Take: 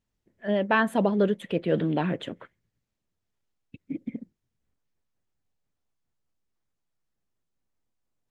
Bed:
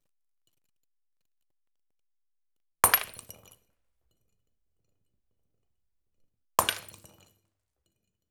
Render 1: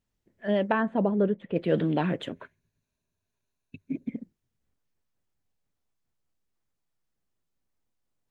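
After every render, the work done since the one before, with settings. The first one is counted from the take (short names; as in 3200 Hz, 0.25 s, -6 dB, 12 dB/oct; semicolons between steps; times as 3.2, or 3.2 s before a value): 0.72–1.56 tape spacing loss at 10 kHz 43 dB; 2.32–4.09 ripple EQ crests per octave 1.5, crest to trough 9 dB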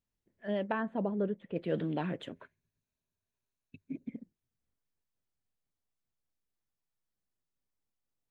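gain -8 dB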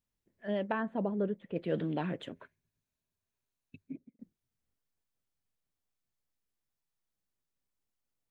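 3.78–4.19 studio fade out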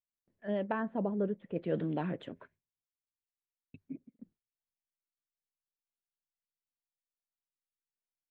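LPF 2000 Hz 6 dB/oct; gate with hold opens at -59 dBFS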